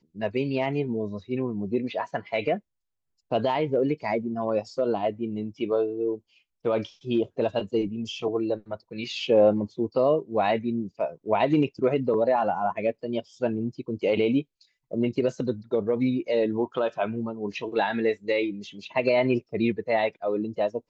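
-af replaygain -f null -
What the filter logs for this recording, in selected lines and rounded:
track_gain = +6.3 dB
track_peak = 0.226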